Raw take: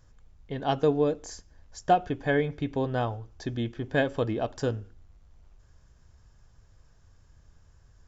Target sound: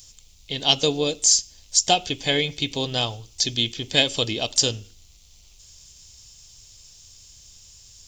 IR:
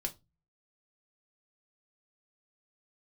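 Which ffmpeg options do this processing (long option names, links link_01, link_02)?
-filter_complex "[0:a]asplit=2[link_01][link_02];[link_02]asetrate=52444,aresample=44100,atempo=0.840896,volume=-18dB[link_03];[link_01][link_03]amix=inputs=2:normalize=0,aexciter=amount=14.1:drive=6.5:freq=2500"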